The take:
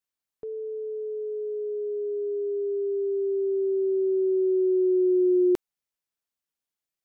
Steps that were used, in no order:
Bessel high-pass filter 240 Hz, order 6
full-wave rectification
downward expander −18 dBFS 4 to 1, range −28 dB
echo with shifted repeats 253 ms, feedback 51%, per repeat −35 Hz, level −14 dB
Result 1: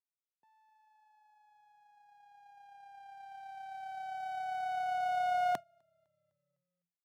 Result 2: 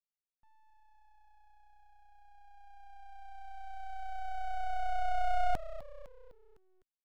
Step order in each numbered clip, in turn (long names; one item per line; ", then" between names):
full-wave rectification, then echo with shifted repeats, then downward expander, then Bessel high-pass filter
downward expander, then echo with shifted repeats, then Bessel high-pass filter, then full-wave rectification